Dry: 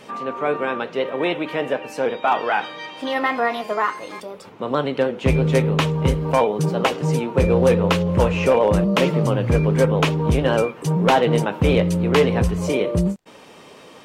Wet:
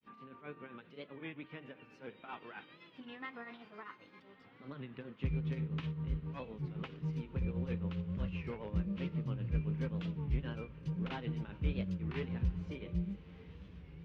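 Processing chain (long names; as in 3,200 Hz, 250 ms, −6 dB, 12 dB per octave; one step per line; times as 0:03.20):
guitar amp tone stack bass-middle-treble 6-0-2
granular cloud 195 ms, grains 7.6 per second, spray 26 ms, pitch spread up and down by 0 semitones
high-frequency loss of the air 310 metres
feedback delay with all-pass diffusion 1,259 ms, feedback 45%, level −15.5 dB
wow of a warped record 33 1/3 rpm, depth 160 cents
level +1.5 dB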